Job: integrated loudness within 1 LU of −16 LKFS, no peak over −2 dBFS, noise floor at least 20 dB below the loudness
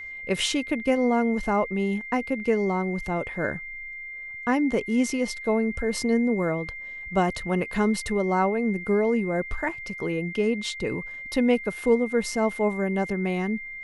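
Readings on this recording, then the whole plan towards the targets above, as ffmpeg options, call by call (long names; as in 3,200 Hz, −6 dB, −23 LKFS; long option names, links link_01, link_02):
interfering tone 2,100 Hz; level of the tone −35 dBFS; integrated loudness −26.0 LKFS; sample peak −9.0 dBFS; target loudness −16.0 LKFS
→ -af "bandreject=frequency=2100:width=30"
-af "volume=10dB,alimiter=limit=-2dB:level=0:latency=1"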